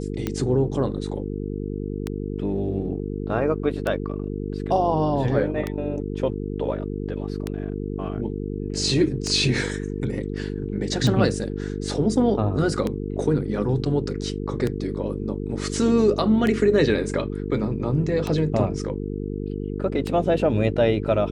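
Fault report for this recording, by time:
mains buzz 50 Hz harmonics 9 −29 dBFS
scratch tick 33 1/3 rpm −12 dBFS

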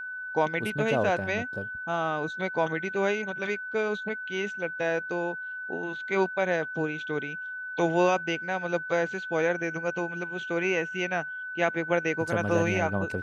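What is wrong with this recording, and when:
whistle 1,500 Hz −34 dBFS

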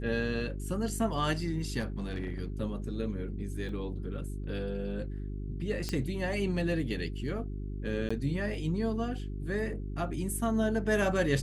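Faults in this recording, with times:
mains hum 50 Hz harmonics 8 −37 dBFS
0:01.79–0:02.40: clipping −29 dBFS
0:03.69: drop-out 2.3 ms
0:05.89: click −19 dBFS
0:08.09–0:08.11: drop-out 15 ms

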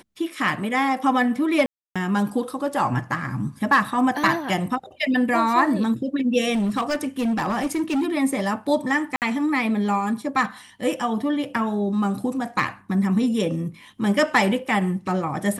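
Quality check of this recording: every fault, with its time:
0:01.66–0:01.96: drop-out 296 ms
0:06.53–0:08.07: clipping −19 dBFS
0:09.16–0:09.22: drop-out 58 ms

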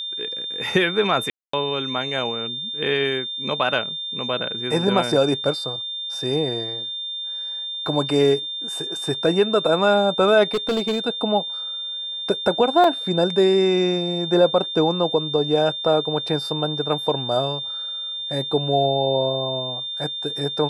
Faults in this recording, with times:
whistle 3,600 Hz −27 dBFS
0:01.30–0:01.53: drop-out 234 ms
0:10.54–0:11.07: clipping −17.5 dBFS
0:12.84: drop-out 2.4 ms

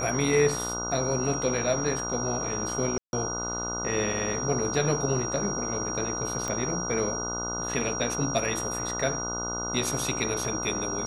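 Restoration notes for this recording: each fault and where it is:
mains buzz 60 Hz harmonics 25 −35 dBFS
whistle 5,700 Hz −32 dBFS
0:02.98–0:03.13: drop-out 151 ms
0:06.48: click −17 dBFS

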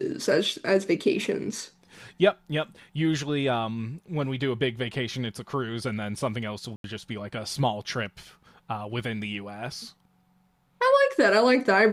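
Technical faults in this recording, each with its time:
0:06.76–0:06.84: drop-out 82 ms

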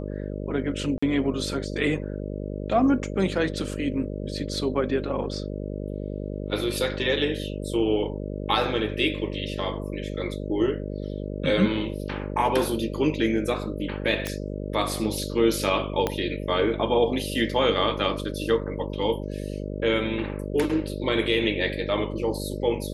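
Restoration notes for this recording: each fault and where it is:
mains buzz 50 Hz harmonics 12 −32 dBFS
0:00.98–0:01.02: drop-out 45 ms
0:14.27: click −12 dBFS
0:16.07: click −10 dBFS

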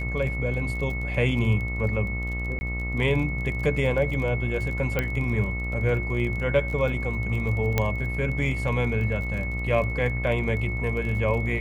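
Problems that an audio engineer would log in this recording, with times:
mains buzz 60 Hz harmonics 23 −30 dBFS
surface crackle 31 per second −33 dBFS
whistle 2,200 Hz −32 dBFS
0:02.59–0:02.61: drop-out 20 ms
0:04.99: click −11 dBFS
0:07.78: click −8 dBFS

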